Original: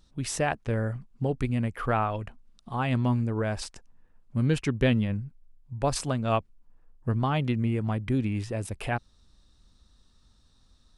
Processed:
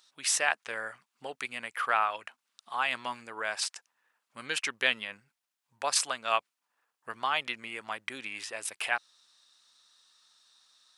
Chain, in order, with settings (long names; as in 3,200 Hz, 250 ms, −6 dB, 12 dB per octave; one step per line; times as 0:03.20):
high-pass filter 1,300 Hz 12 dB per octave
level +6.5 dB